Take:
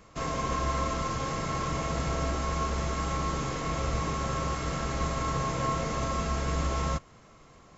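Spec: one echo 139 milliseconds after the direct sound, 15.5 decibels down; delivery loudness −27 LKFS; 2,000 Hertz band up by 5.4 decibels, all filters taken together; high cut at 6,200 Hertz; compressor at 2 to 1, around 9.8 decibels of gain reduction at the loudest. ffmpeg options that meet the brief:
ffmpeg -i in.wav -af "lowpass=6200,equalizer=frequency=2000:width_type=o:gain=6.5,acompressor=threshold=-43dB:ratio=2,aecho=1:1:139:0.168,volume=12dB" out.wav

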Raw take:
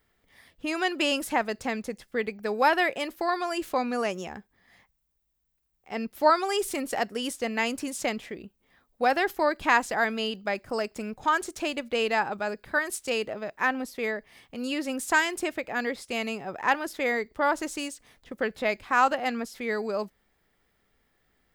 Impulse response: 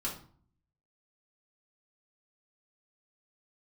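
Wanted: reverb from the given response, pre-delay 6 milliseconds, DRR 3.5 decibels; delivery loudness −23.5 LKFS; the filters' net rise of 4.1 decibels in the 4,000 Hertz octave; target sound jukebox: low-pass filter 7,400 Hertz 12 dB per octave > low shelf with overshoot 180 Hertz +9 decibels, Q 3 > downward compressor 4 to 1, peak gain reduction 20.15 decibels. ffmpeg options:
-filter_complex "[0:a]equalizer=frequency=4000:width_type=o:gain=6.5,asplit=2[link_01][link_02];[1:a]atrim=start_sample=2205,adelay=6[link_03];[link_02][link_03]afir=irnorm=-1:irlink=0,volume=-6dB[link_04];[link_01][link_04]amix=inputs=2:normalize=0,lowpass=7400,lowshelf=frequency=180:width_type=q:width=3:gain=9,acompressor=threshold=-38dB:ratio=4,volume=16dB"

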